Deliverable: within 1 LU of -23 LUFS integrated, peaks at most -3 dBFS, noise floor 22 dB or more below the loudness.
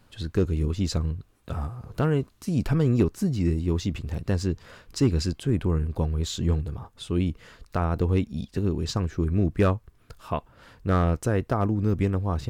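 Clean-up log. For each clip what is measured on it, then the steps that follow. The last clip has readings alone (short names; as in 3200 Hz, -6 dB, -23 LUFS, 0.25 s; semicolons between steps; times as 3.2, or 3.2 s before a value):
loudness -26.5 LUFS; peak -12.0 dBFS; loudness target -23.0 LUFS
-> gain +3.5 dB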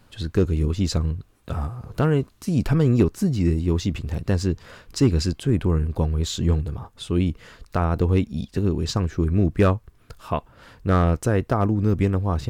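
loudness -23.0 LUFS; peak -8.5 dBFS; noise floor -56 dBFS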